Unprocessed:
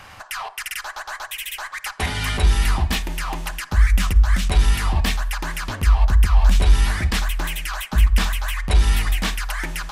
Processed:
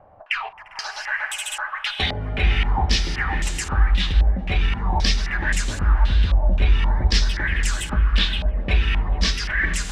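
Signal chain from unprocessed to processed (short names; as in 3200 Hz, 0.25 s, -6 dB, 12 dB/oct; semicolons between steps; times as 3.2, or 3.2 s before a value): in parallel at -3 dB: compressor, threshold -26 dBFS, peak gain reduction 16.5 dB; on the sum: spectral noise reduction 9 dB; diffused feedback echo 0.462 s, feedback 55%, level -6 dB; stepped low-pass 3.8 Hz 640–7400 Hz; gain -4 dB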